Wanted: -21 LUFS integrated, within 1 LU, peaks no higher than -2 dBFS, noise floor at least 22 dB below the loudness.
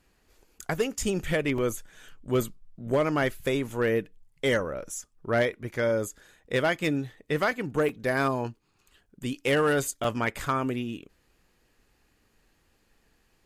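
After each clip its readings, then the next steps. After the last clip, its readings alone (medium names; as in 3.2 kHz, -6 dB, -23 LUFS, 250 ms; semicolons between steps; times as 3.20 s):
clipped samples 0.4%; clipping level -17.0 dBFS; dropouts 3; longest dropout 3.2 ms; loudness -28.5 LUFS; peak level -17.0 dBFS; loudness target -21.0 LUFS
-> clip repair -17 dBFS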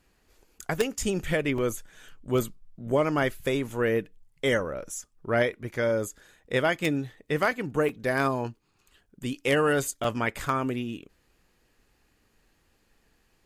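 clipped samples 0.0%; dropouts 3; longest dropout 3.2 ms
-> interpolate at 1.58/7.89/10.04 s, 3.2 ms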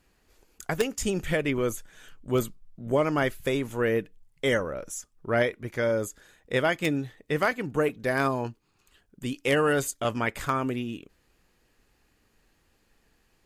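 dropouts 0; loudness -28.0 LUFS; peak level -8.0 dBFS; loudness target -21.0 LUFS
-> trim +7 dB; peak limiter -2 dBFS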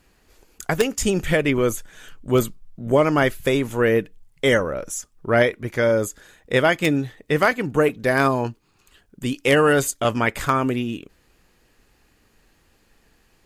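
loudness -21.0 LUFS; peak level -2.0 dBFS; noise floor -61 dBFS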